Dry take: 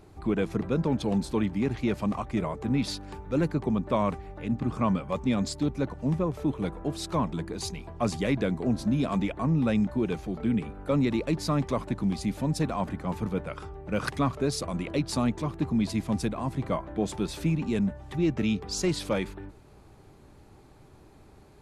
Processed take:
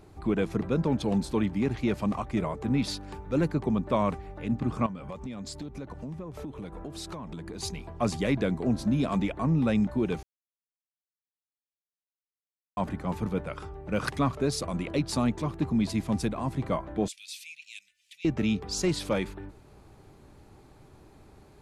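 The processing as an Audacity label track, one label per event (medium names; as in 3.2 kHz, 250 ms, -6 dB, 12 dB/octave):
4.860000	7.630000	compression 12:1, threshold -34 dBFS
10.230000	12.770000	mute
17.080000	18.250000	elliptic high-pass 2.4 kHz, stop band 60 dB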